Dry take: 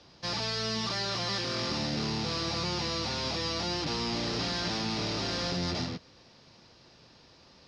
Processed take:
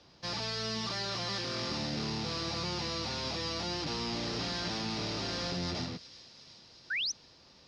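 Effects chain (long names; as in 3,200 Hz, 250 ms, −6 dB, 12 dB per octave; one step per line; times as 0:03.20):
delay with a high-pass on its return 363 ms, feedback 72%, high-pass 3,100 Hz, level −15 dB
sound drawn into the spectrogram rise, 0:06.90–0:07.12, 1,400–6,400 Hz −29 dBFS
level −3.5 dB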